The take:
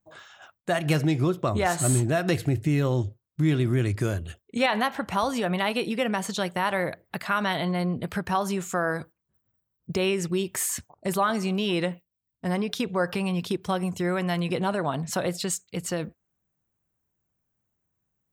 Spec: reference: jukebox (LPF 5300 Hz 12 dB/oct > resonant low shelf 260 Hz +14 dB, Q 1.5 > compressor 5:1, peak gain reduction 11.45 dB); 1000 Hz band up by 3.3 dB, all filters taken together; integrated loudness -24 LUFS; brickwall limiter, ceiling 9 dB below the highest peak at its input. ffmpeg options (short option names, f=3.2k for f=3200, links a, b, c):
-af "equalizer=f=1k:t=o:g=5.5,alimiter=limit=-16.5dB:level=0:latency=1,lowpass=5.3k,lowshelf=f=260:t=q:w=1.5:g=14,acompressor=threshold=-18dB:ratio=5,volume=-1.5dB"